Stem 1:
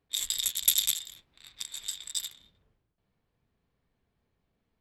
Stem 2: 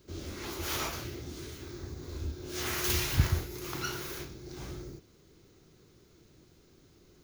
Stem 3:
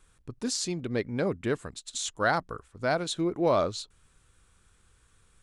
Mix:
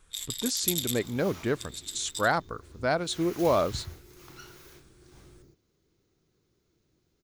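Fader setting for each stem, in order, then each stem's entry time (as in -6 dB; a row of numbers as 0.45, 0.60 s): -5.0, -12.5, +0.5 dB; 0.00, 0.55, 0.00 s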